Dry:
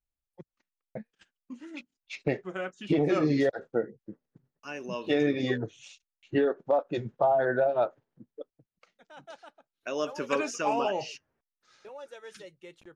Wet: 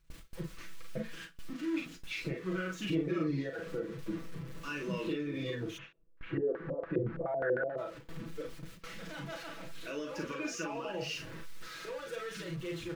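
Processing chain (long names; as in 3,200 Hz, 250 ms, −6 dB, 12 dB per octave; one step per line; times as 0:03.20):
converter with a step at zero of −40.5 dBFS
downward compressor, threshold −30 dBFS, peak gain reduction 10 dB
brickwall limiter −28.5 dBFS, peak gain reduction 10.5 dB
parametric band 760 Hz −13.5 dB 0.57 octaves
comb filter 6.1 ms, depth 71%
ambience of single reflections 37 ms −4.5 dB, 49 ms −6.5 dB
0:05.77–0:07.77: auto-filter low-pass square 1.6 Hz → 8.7 Hz 490–1,600 Hz
low-pass filter 2,800 Hz 6 dB per octave
noise gate with hold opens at −36 dBFS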